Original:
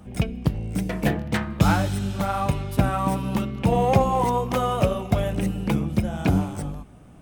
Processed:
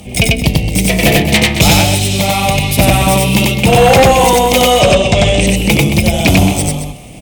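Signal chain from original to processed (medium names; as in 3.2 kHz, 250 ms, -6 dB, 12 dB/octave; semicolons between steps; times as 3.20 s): FFT filter 270 Hz 0 dB, 680 Hz +5 dB, 1.5 kHz -11 dB, 2.2 kHz +13 dB; 1.72–2.54 s: compression, threshold -21 dBFS, peak gain reduction 6.5 dB; 4.70–5.47 s: brick-wall FIR low-pass 9.1 kHz; saturation -7 dBFS, distortion -21 dB; on a send: loudspeakers at several distances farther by 32 m -1 dB, 76 m -11 dB; on the sum: sine folder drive 7 dB, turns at -2.5 dBFS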